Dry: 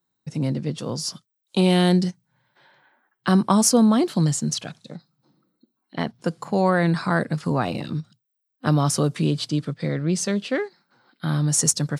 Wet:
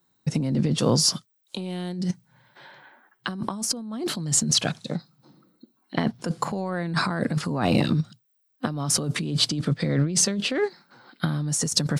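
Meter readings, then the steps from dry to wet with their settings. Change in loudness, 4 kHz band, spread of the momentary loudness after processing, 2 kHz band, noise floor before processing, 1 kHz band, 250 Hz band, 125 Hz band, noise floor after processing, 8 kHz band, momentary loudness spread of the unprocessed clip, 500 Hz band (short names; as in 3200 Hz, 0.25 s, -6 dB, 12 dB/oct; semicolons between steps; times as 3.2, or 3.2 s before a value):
-3.0 dB, +4.0 dB, 12 LU, -2.0 dB, -78 dBFS, -5.0 dB, -5.0 dB, -3.0 dB, -70 dBFS, 0.0 dB, 13 LU, -4.5 dB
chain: dynamic EQ 230 Hz, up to +4 dB, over -28 dBFS, Q 1.3; negative-ratio compressor -27 dBFS, ratio -1; gain +1.5 dB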